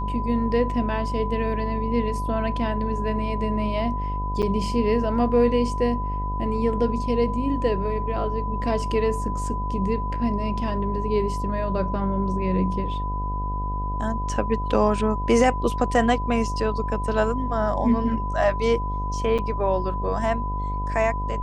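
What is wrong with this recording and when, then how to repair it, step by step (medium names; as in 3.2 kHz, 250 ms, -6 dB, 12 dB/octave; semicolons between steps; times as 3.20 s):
buzz 50 Hz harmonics 19 -28 dBFS
whine 1 kHz -29 dBFS
4.42–4.43 s: dropout 8 ms
19.38–19.39 s: dropout 7.1 ms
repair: band-stop 1 kHz, Q 30; de-hum 50 Hz, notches 19; interpolate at 4.42 s, 8 ms; interpolate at 19.38 s, 7.1 ms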